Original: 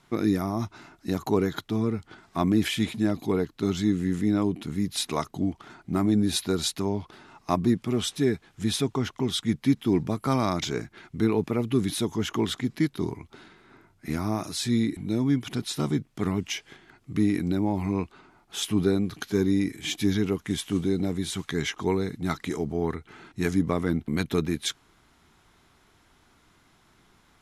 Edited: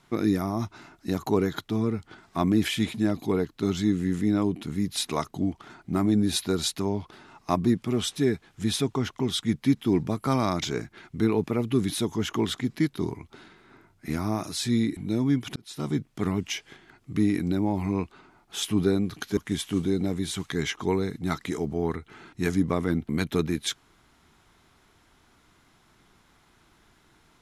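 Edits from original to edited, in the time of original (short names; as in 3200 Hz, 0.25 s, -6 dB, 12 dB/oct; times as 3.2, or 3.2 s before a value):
15.56–15.99 fade in
19.37–20.36 cut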